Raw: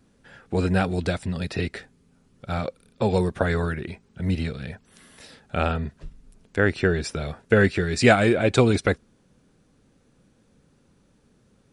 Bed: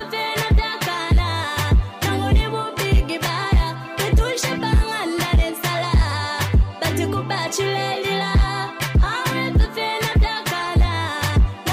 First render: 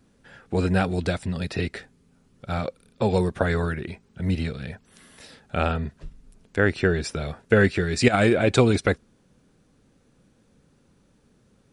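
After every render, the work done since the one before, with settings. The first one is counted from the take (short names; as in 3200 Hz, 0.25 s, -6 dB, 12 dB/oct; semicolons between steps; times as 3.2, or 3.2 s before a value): 8.08–8.58 negative-ratio compressor -18 dBFS, ratio -0.5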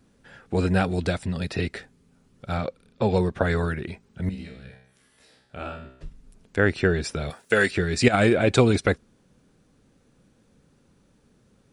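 2.57–3.45 air absorption 58 m; 4.29–6.01 resonator 64 Hz, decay 0.66 s, mix 90%; 7.3–7.71 RIAA curve recording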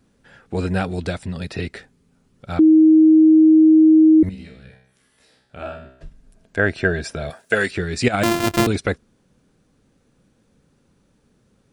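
2.59–4.23 bleep 315 Hz -7.5 dBFS; 5.62–7.55 small resonant body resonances 650/1600 Hz, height 11 dB; 8.23–8.67 sample sorter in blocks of 128 samples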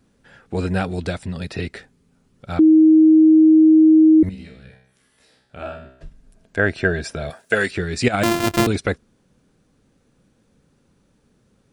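nothing audible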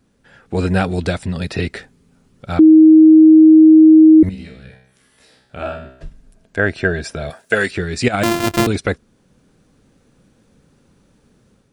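AGC gain up to 6 dB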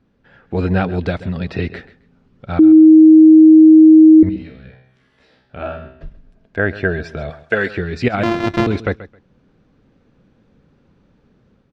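air absorption 220 m; feedback echo 0.133 s, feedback 18%, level -16 dB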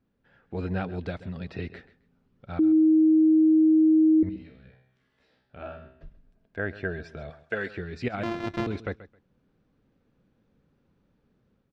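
gain -13 dB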